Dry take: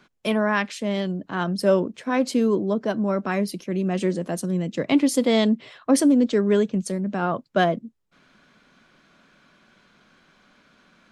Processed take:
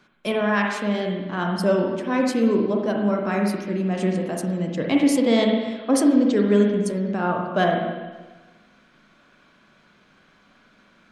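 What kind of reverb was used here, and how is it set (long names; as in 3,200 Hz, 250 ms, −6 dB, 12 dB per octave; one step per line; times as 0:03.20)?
spring reverb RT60 1.3 s, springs 39/48/58 ms, chirp 55 ms, DRR 0.5 dB
level −1.5 dB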